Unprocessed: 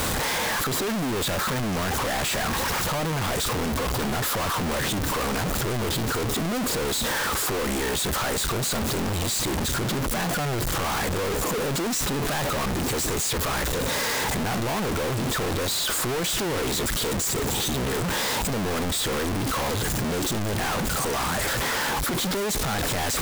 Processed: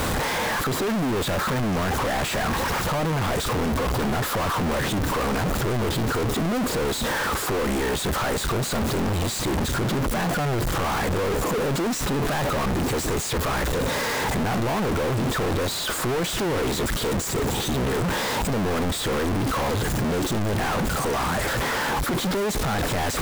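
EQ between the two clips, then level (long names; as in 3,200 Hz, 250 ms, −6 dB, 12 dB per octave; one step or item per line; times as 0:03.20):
high-shelf EQ 2,700 Hz −7.5 dB
+3.0 dB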